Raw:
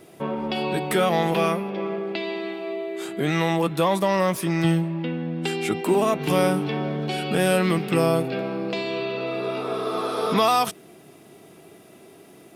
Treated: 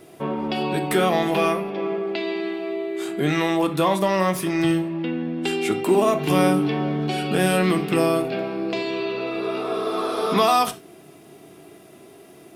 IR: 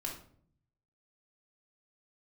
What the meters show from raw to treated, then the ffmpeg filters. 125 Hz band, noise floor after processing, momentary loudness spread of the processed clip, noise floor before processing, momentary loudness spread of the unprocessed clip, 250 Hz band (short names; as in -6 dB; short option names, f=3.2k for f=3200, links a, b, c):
-1.0 dB, -47 dBFS, 8 LU, -49 dBFS, 8 LU, +2.5 dB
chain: -filter_complex "[0:a]asplit=2[a][b];[1:a]atrim=start_sample=2205,atrim=end_sample=4410[c];[b][c]afir=irnorm=-1:irlink=0,volume=-3dB[d];[a][d]amix=inputs=2:normalize=0,volume=-2.5dB"